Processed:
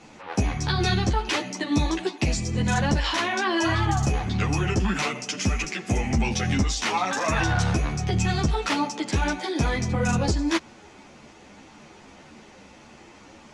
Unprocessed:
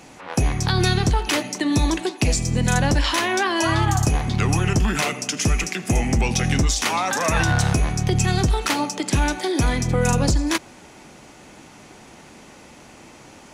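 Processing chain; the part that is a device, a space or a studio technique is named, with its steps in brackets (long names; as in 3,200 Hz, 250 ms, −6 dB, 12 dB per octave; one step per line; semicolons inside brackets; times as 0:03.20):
string-machine ensemble chorus (string-ensemble chorus; low-pass filter 6,100 Hz 12 dB per octave)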